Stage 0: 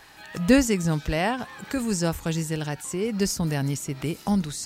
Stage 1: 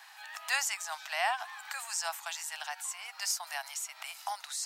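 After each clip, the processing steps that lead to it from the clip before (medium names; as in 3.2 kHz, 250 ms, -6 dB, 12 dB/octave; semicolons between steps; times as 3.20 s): steep high-pass 700 Hz 72 dB/octave; trim -2.5 dB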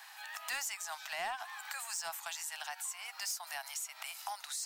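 saturation -25 dBFS, distortion -16 dB; treble shelf 11 kHz +7.5 dB; compression 2:1, threshold -40 dBFS, peak gain reduction 6.5 dB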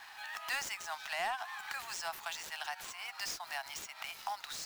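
median filter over 5 samples; trim +2.5 dB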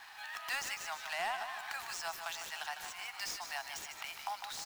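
feedback delay 152 ms, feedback 51%, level -8.5 dB; trim -1 dB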